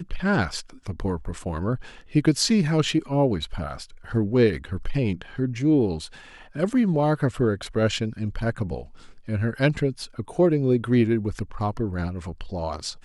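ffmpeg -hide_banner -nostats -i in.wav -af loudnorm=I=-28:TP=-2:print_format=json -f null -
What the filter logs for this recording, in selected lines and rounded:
"input_i" : "-24.7",
"input_tp" : "-8.0",
"input_lra" : "1.4",
"input_thresh" : "-35.0",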